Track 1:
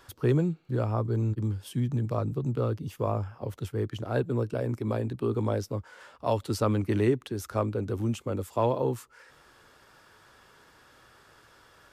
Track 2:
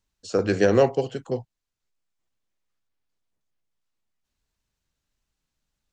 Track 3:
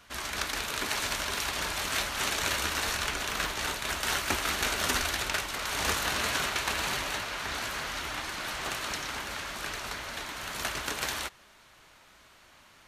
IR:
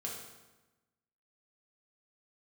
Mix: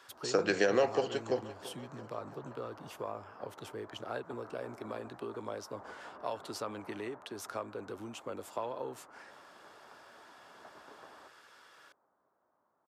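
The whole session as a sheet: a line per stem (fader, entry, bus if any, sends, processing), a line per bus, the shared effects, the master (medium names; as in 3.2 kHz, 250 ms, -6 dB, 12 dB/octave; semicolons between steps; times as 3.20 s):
-1.5 dB, 0.00 s, no send, no echo send, compression, threshold -30 dBFS, peak gain reduction 11 dB
+1.0 dB, 0.00 s, no send, echo send -18 dB, compression, threshold -21 dBFS, peak gain reduction 8.5 dB
-9.5 dB, 0.00 s, no send, echo send -19.5 dB, Bessel low-pass 700 Hz, order 6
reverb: none
echo: feedback delay 338 ms, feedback 59%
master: frequency weighting A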